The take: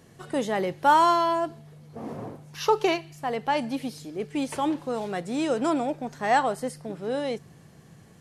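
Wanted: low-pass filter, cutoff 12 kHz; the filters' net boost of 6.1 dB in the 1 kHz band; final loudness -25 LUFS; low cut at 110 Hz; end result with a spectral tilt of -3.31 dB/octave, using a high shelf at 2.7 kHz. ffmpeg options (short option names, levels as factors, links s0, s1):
-af "highpass=110,lowpass=12000,equalizer=f=1000:t=o:g=6,highshelf=f=2700:g=8.5,volume=0.668"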